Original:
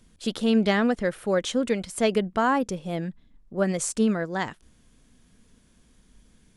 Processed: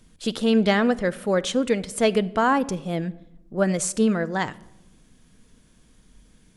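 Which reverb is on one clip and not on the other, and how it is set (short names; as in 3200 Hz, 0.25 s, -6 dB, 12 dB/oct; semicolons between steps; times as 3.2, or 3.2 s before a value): shoebox room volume 3800 m³, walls furnished, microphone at 0.54 m; gain +2.5 dB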